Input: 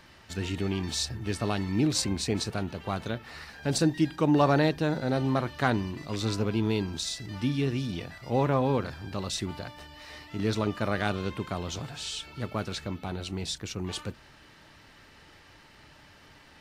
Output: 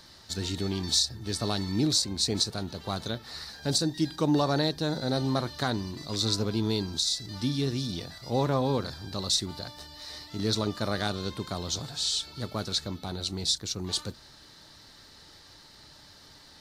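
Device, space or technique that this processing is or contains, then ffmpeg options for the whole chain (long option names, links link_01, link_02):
over-bright horn tweeter: -af "highshelf=frequency=3300:width_type=q:width=3:gain=6.5,alimiter=limit=-13dB:level=0:latency=1:release=389,volume=-1dB"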